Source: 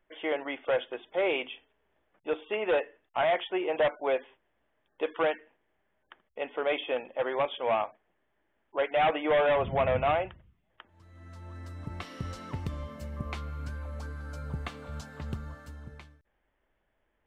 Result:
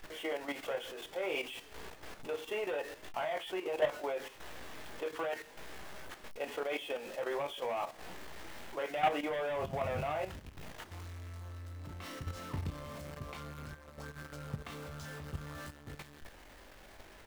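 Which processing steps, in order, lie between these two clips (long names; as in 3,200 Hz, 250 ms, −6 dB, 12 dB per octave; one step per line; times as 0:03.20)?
converter with a step at zero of −36.5 dBFS
ambience of single reflections 21 ms −6 dB, 34 ms −10.5 dB
output level in coarse steps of 10 dB
level −5 dB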